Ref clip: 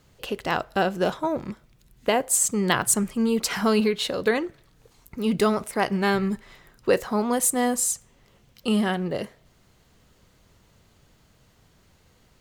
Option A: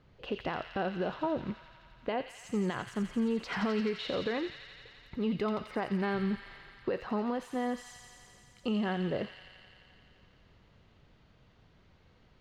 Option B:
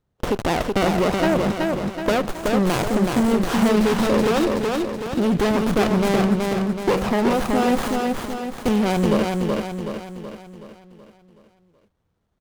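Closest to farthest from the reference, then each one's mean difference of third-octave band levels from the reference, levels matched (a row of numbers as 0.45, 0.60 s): A, B; 6.0, 10.5 dB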